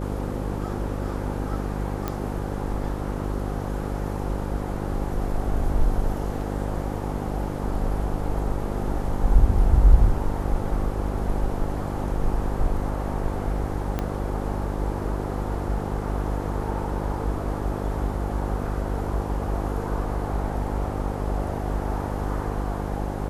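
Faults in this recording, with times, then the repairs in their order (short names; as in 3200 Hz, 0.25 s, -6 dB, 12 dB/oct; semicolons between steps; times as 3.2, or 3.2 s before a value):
buzz 50 Hz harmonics 11 -29 dBFS
2.08 pop -13 dBFS
13.99 pop -13 dBFS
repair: de-click; de-hum 50 Hz, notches 11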